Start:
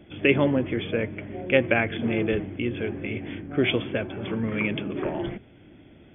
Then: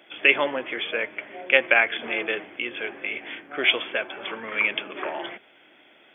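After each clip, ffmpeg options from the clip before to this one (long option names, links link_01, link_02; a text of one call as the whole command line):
ffmpeg -i in.wav -af "highpass=840,volume=7dB" out.wav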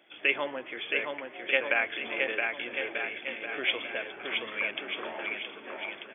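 ffmpeg -i in.wav -af "aecho=1:1:670|1240|1724|2135|2485:0.631|0.398|0.251|0.158|0.1,volume=-8.5dB" out.wav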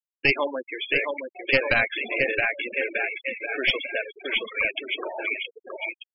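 ffmpeg -i in.wav -af "aeval=exprs='clip(val(0),-1,0.0473)':channel_layout=same,afftfilt=real='re*gte(hypot(re,im),0.0355)':imag='im*gte(hypot(re,im),0.0355)':win_size=1024:overlap=0.75,volume=7.5dB" out.wav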